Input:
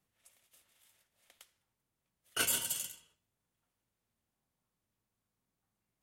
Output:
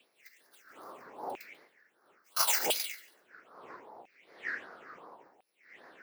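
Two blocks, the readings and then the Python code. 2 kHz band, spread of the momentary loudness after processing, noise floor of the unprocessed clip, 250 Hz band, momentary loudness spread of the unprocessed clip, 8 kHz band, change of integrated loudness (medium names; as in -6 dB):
+5.5 dB, 24 LU, under -85 dBFS, +3.0 dB, 11 LU, +1.0 dB, +1.5 dB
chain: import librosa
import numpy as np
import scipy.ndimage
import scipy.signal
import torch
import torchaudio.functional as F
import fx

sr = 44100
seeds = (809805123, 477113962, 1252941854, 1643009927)

p1 = fx.bit_reversed(x, sr, seeds[0], block=128)
p2 = fx.dmg_wind(p1, sr, seeds[1], corner_hz=300.0, level_db=-42.0)
p3 = fx.peak_eq(p2, sr, hz=470.0, db=7.5, octaves=1.8)
p4 = fx.phaser_stages(p3, sr, stages=6, low_hz=790.0, high_hz=2600.0, hz=2.6, feedback_pct=45)
p5 = p4 + fx.echo_feedback(p4, sr, ms=140, feedback_pct=30, wet_db=-20, dry=0)
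p6 = fx.filter_lfo_highpass(p5, sr, shape='saw_down', hz=0.74, low_hz=800.0, high_hz=2600.0, q=6.0)
y = p6 * 10.0 ** (6.0 / 20.0)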